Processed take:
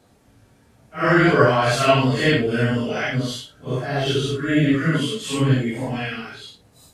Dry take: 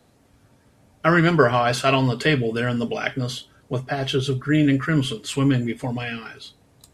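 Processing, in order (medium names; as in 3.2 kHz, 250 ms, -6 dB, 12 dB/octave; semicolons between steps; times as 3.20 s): phase randomisation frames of 200 ms; 4.74–5.23 s: high-pass 140 Hz; trim +2 dB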